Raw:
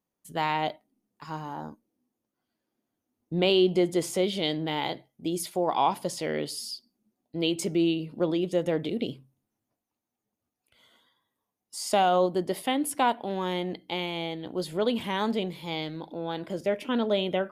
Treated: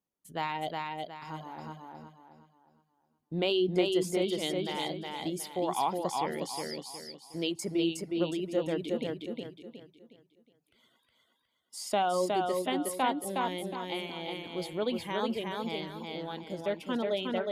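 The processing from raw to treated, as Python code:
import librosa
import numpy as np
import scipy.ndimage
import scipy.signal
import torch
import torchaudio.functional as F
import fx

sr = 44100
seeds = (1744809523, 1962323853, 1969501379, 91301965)

p1 = fx.dereverb_blind(x, sr, rt60_s=0.82)
p2 = p1 + fx.echo_feedback(p1, sr, ms=364, feedback_pct=35, wet_db=-3.0, dry=0)
y = F.gain(torch.from_numpy(p2), -5.0).numpy()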